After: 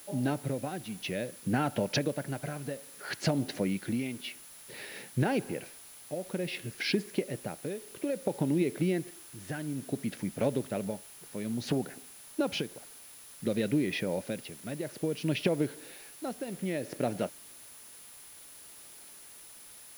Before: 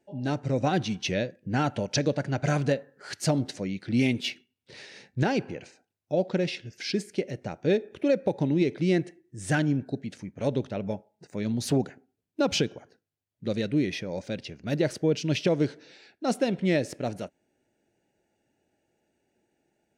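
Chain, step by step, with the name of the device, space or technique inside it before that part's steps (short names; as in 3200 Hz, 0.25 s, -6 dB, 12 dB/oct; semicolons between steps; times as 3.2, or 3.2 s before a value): medium wave at night (BPF 130–3500 Hz; compressor, threshold -30 dBFS, peak gain reduction 11 dB; tremolo 0.58 Hz, depth 68%; whine 10000 Hz -57 dBFS; white noise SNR 19 dB); gain +5.5 dB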